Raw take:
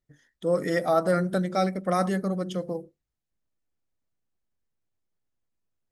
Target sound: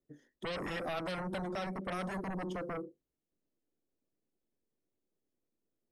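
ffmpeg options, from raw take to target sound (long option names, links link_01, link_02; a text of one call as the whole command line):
ffmpeg -i in.wav -filter_complex "[0:a]acrossover=split=270|440|4500[link_01][link_02][link_03][link_04];[link_02]aeval=exprs='0.0596*sin(PI/2*7.08*val(0)/0.0596)':channel_layout=same[link_05];[link_01][link_05][link_03][link_04]amix=inputs=4:normalize=0,acompressor=threshold=-32dB:ratio=2,volume=-8dB" out.wav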